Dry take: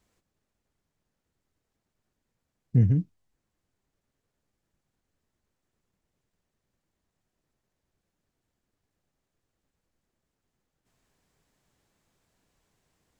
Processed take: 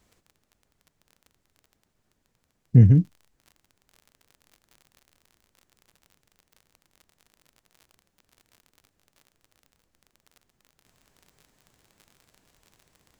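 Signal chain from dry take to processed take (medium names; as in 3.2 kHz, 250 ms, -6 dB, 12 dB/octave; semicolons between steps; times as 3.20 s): crackle 11 per s -47 dBFS, from 2.94 s 47 per s; trim +7 dB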